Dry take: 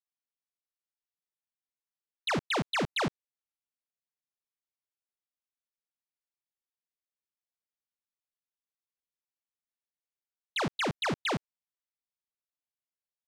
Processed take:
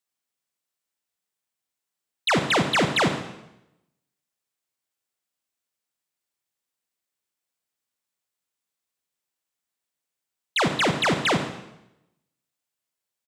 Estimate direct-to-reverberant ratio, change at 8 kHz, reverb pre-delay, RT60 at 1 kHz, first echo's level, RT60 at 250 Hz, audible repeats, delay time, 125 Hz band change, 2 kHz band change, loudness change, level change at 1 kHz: 6.5 dB, +11.0 dB, 33 ms, 0.85 s, -19.0 dB, 0.95 s, 1, 0.136 s, +8.5 dB, +9.5 dB, +9.0 dB, +9.0 dB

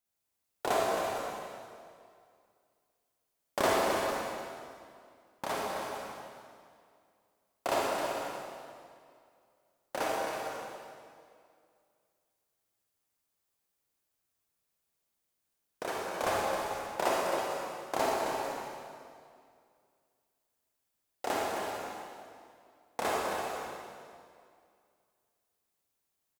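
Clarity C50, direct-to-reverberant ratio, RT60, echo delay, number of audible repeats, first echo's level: -4.0 dB, -5.0 dB, 2.3 s, 0.265 s, 2, -7.0 dB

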